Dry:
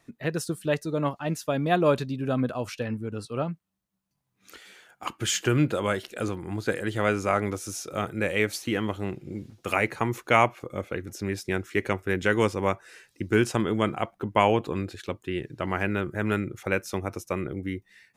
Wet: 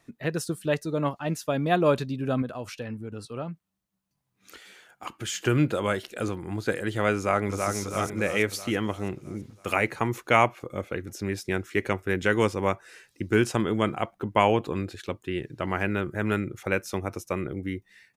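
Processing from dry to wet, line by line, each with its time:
2.42–5.42 s: compression 1.5:1, threshold -38 dBFS
7.16–7.76 s: echo throw 330 ms, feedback 55%, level -4 dB

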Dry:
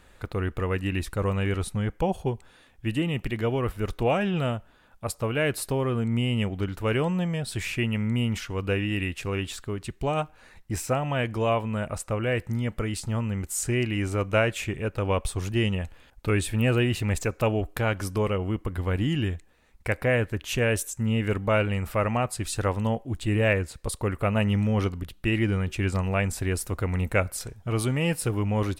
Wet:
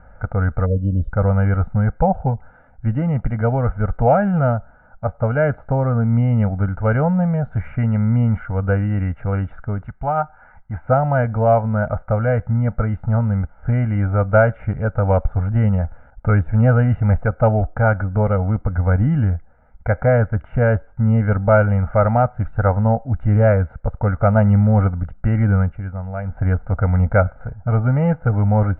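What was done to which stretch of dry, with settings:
0.66–1.11 s: spectral selection erased 630–2900 Hz
9.87–10.84 s: resonant low shelf 680 Hz -6.5 dB, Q 1.5
25.62–26.43 s: dip -11.5 dB, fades 0.19 s
whole clip: de-esser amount 80%; steep low-pass 1.6 kHz 36 dB/octave; comb 1.4 ms, depth 94%; trim +6.5 dB

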